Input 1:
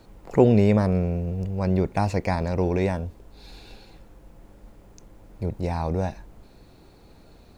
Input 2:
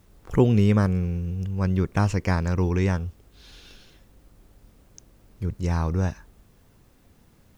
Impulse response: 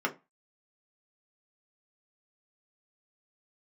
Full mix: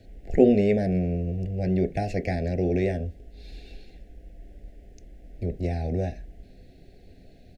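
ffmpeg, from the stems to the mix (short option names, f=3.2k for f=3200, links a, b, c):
-filter_complex "[0:a]highshelf=f=6.4k:g=-8,volume=-3.5dB,asplit=2[a][b];[b]volume=-12.5dB[c];[1:a]aemphasis=mode=reproduction:type=riaa,acompressor=threshold=-14dB:ratio=6,adelay=2.3,volume=-10.5dB[d];[2:a]atrim=start_sample=2205[e];[c][e]afir=irnorm=-1:irlink=0[f];[a][d][f]amix=inputs=3:normalize=0,asuperstop=centerf=1100:order=12:qfactor=1.3"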